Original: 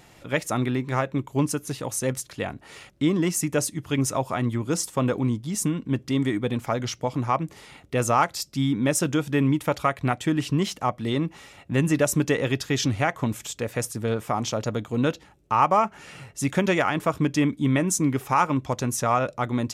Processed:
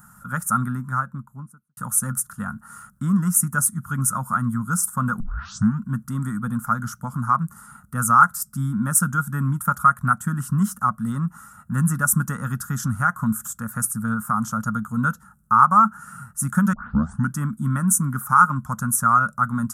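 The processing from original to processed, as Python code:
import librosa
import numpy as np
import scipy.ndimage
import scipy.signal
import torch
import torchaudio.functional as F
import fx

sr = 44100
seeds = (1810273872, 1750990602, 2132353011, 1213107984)

y = fx.studio_fade_out(x, sr, start_s=0.58, length_s=1.19)
y = fx.edit(y, sr, fx.tape_start(start_s=5.2, length_s=0.64),
    fx.tape_start(start_s=16.73, length_s=0.59), tone=tone)
y = fx.curve_eq(y, sr, hz=(110.0, 220.0, 330.0, 710.0, 1400.0, 2200.0, 4100.0, 9500.0), db=(0, 9, -24, -13, 15, -23, -19, 12))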